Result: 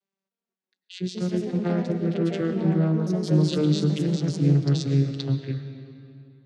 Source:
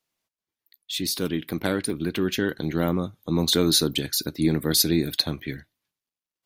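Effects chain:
vocoder with a gliding carrier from G3, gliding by −8 semitones
convolution reverb RT60 2.7 s, pre-delay 75 ms, DRR 8.5 dB
delay with pitch and tempo change per echo 303 ms, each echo +3 semitones, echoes 2, each echo −6 dB
level +1.5 dB

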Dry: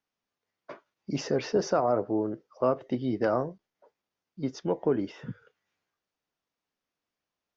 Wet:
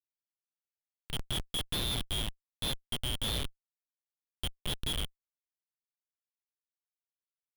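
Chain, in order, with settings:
band-splitting scrambler in four parts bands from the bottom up 2413
Bessel high-pass filter 1,100 Hz, order 8
feedback delay network reverb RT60 1.8 s, high-frequency decay 0.85×, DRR 16.5 dB
comparator with hysteresis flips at −25 dBFS

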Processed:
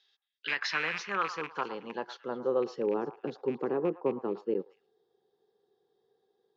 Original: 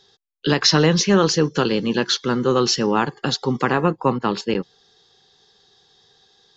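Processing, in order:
loose part that buzzes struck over −21 dBFS, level −10 dBFS
echo through a band-pass that steps 110 ms, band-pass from 980 Hz, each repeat 1.4 octaves, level −10.5 dB
band-pass filter sweep 2,500 Hz → 410 Hz, 0:00.14–0:03.06
level −5.5 dB

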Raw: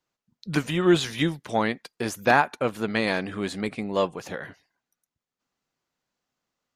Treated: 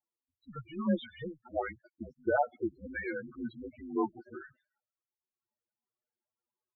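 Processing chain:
lower of the sound and its delayed copy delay 7.9 ms
spectral peaks only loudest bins 8
single-sideband voice off tune −150 Hz 360–3,500 Hz
level −4 dB

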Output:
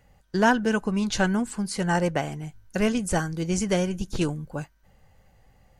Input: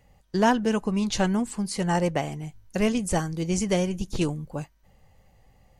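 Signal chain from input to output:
parametric band 1,500 Hz +9 dB 0.26 octaves

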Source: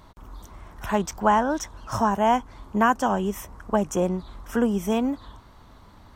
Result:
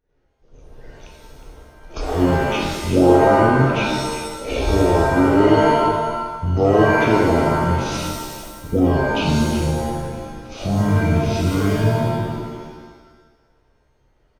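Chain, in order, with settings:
downward expander −35 dBFS
in parallel at −2 dB: downward compressor, threshold −29 dBFS, peak gain reduction 14 dB
on the sum: single-tap delay 155 ms −11.5 dB
wrong playback speed 78 rpm record played at 33 rpm
reverb with rising layers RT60 1.1 s, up +7 semitones, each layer −2 dB, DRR −1 dB

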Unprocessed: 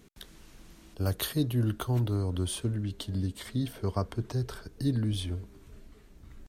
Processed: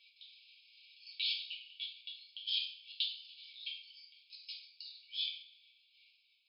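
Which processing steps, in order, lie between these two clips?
output level in coarse steps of 20 dB
coupled-rooms reverb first 0.49 s, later 1.9 s, from −24 dB, DRR −6.5 dB
brick-wall band-pass 2,200–5,200 Hz
level +4.5 dB

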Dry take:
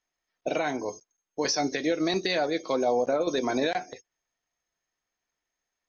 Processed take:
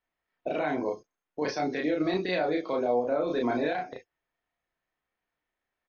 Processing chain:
Bessel low-pass filter 2,600 Hz, order 4
brickwall limiter −21.5 dBFS, peak gain reduction 6 dB
double-tracking delay 33 ms −2 dB

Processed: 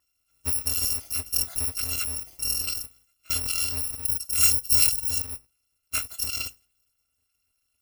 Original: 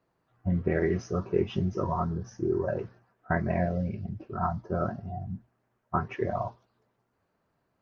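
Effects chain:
samples in bit-reversed order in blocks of 256 samples
0:04.05–0:05.22: bass and treble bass +3 dB, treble +11 dB

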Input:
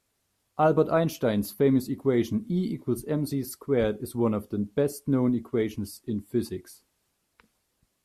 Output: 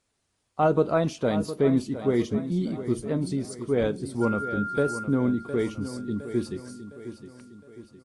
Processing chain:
0:04.21–0:05.03: steady tone 1,400 Hz −30 dBFS
repeating echo 711 ms, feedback 47%, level −12 dB
AAC 48 kbit/s 22,050 Hz

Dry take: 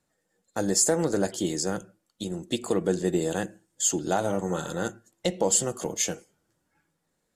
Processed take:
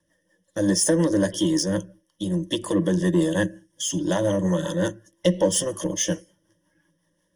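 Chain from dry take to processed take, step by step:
rotating-speaker cabinet horn 5.5 Hz
gain on a spectral selection 0:03.79–0:04.00, 280–2,000 Hz −8 dB
in parallel at −3 dB: soft clipping −27.5 dBFS, distortion −8 dB
on the sum: EQ curve with evenly spaced ripples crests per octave 1.2, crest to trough 17 dB

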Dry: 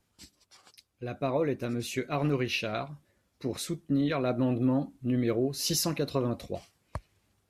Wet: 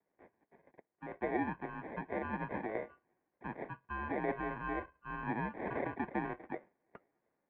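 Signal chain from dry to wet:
pitch vibrato 0.37 Hz 12 cents
decimation without filtering 29×
single-sideband voice off tune −210 Hz 460–2,300 Hz
level −3.5 dB

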